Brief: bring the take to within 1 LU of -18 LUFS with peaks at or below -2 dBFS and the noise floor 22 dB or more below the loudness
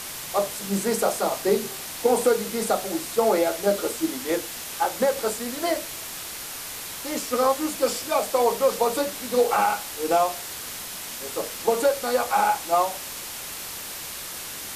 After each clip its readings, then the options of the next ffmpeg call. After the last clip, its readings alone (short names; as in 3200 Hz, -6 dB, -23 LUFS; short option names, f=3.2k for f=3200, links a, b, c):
noise floor -36 dBFS; noise floor target -47 dBFS; loudness -25.0 LUFS; peak -8.0 dBFS; loudness target -18.0 LUFS
-> -af "afftdn=nr=11:nf=-36"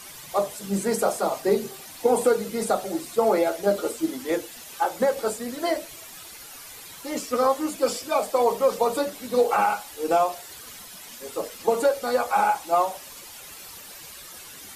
noise floor -43 dBFS; noise floor target -47 dBFS
-> -af "afftdn=nr=6:nf=-43"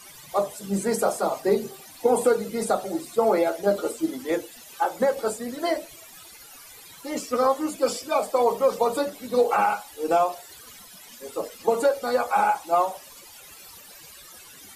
noise floor -47 dBFS; loudness -25.0 LUFS; peak -8.0 dBFS; loudness target -18.0 LUFS
-> -af "volume=7dB,alimiter=limit=-2dB:level=0:latency=1"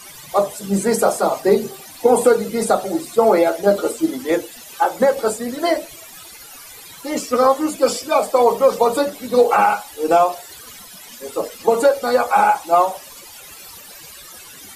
loudness -18.0 LUFS; peak -2.0 dBFS; noise floor -40 dBFS